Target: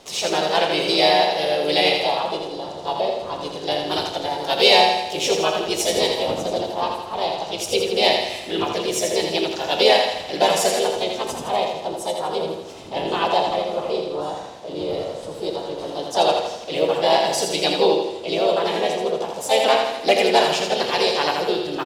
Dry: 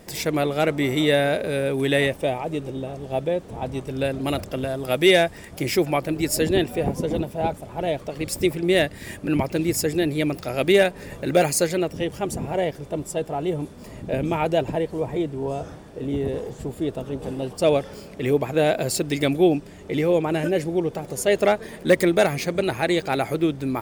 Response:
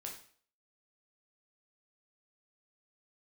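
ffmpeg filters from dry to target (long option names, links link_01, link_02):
-filter_complex "[0:a]asplit=3[link_01][link_02][link_03];[link_02]asetrate=52444,aresample=44100,atempo=0.840896,volume=-3dB[link_04];[link_03]asetrate=58866,aresample=44100,atempo=0.749154,volume=-9dB[link_05];[link_01][link_04][link_05]amix=inputs=3:normalize=0,acrossover=split=340 6400:gain=0.251 1 0.224[link_06][link_07][link_08];[link_06][link_07][link_08]amix=inputs=3:normalize=0,aecho=1:1:89|178|267|356|445|534|623:0.562|0.298|0.158|0.0837|0.0444|0.0235|0.0125,asplit=2[link_09][link_10];[1:a]atrim=start_sample=2205[link_11];[link_10][link_11]afir=irnorm=-1:irlink=0,volume=3dB[link_12];[link_09][link_12]amix=inputs=2:normalize=0,aexciter=amount=3.5:drive=7.2:freq=2800,asetrate=48069,aresample=44100,aemphasis=mode=reproduction:type=50fm,volume=-6dB"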